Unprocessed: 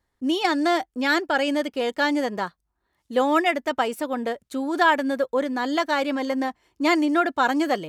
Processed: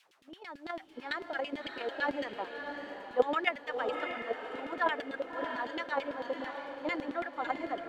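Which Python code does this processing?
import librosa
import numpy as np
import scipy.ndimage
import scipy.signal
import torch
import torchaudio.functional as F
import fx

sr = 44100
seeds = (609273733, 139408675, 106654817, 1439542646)

p1 = fx.fade_in_head(x, sr, length_s=2.38)
p2 = fx.chopper(p1, sr, hz=7.2, depth_pct=60, duty_pct=10)
p3 = fx.quant_dither(p2, sr, seeds[0], bits=10, dither='triangular')
p4 = fx.filter_lfo_bandpass(p3, sr, shape='saw_down', hz=9.0, low_hz=340.0, high_hz=3400.0, q=2.1)
p5 = fx.rider(p4, sr, range_db=5, speed_s=2.0)
y = p5 + fx.echo_diffused(p5, sr, ms=642, feedback_pct=42, wet_db=-6.5, dry=0)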